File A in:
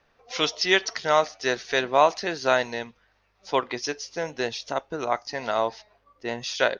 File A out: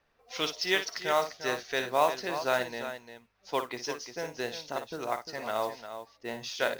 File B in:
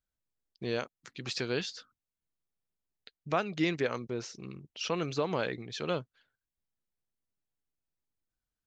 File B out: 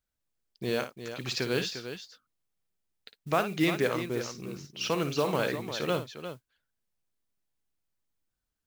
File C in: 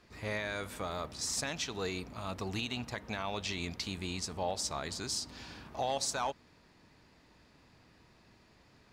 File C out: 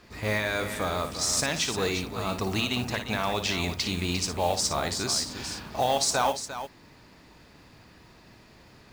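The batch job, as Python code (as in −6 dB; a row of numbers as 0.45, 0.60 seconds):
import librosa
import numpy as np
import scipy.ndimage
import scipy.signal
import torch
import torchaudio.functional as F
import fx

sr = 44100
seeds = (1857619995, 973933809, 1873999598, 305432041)

y = fx.echo_multitap(x, sr, ms=(56, 350), db=(-10.0, -10.0))
y = fx.mod_noise(y, sr, seeds[0], snr_db=21)
y = librosa.util.normalize(y) * 10.0 ** (-12 / 20.0)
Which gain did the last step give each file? −7.0, +3.0, +8.5 decibels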